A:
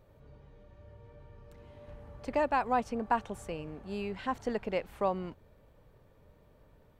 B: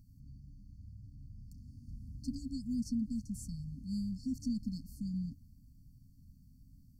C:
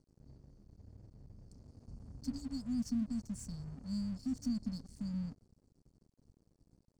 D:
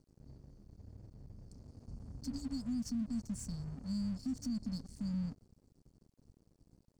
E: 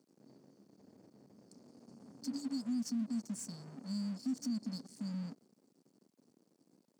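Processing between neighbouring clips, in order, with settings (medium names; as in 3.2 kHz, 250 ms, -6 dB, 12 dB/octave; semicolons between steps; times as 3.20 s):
FFT band-reject 280–4300 Hz; trim +3.5 dB
steep low-pass 9.4 kHz 48 dB/octave; crossover distortion -57.5 dBFS; bass shelf 180 Hz -5 dB; trim +2 dB
peak limiter -33 dBFS, peak gain reduction 6.5 dB; trim +2.5 dB
high-pass 210 Hz 24 dB/octave; trim +2.5 dB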